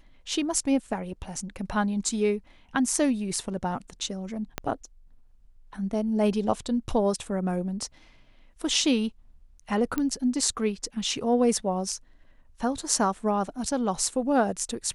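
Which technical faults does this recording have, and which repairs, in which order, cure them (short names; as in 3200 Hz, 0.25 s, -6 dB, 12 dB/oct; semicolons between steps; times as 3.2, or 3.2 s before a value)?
4.58 pop -13 dBFS
9.98 pop -14 dBFS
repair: de-click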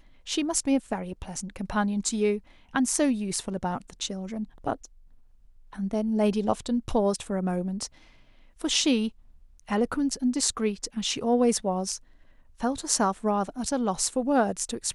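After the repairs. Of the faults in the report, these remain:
4.58 pop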